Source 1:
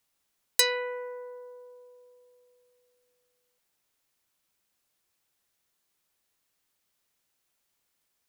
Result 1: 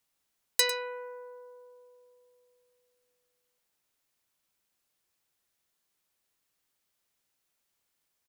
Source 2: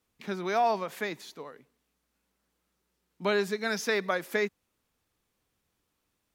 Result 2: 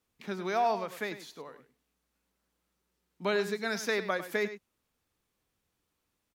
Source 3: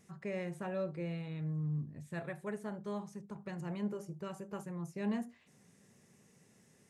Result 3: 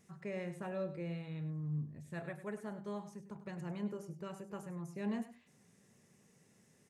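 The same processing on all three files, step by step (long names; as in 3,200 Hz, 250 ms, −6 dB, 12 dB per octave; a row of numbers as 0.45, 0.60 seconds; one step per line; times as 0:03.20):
single-tap delay 100 ms −12.5 dB
level −2.5 dB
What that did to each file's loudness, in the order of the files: −2.0, −2.0, −2.5 LU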